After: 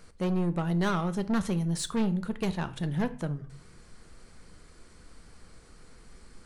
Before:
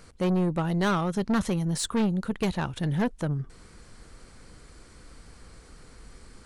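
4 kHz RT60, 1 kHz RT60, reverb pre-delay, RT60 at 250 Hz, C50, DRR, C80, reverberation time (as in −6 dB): 0.35 s, 0.45 s, 3 ms, 0.50 s, 17.0 dB, 10.5 dB, 20.5 dB, 0.50 s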